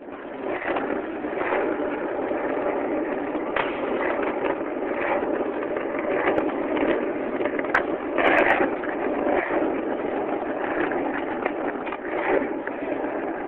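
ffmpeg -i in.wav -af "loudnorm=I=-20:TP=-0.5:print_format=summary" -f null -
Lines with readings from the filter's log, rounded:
Input Integrated:    -25.5 LUFS
Input True Peak:      -6.8 dBTP
Input LRA:             3.6 LU
Input Threshold:     -35.5 LUFS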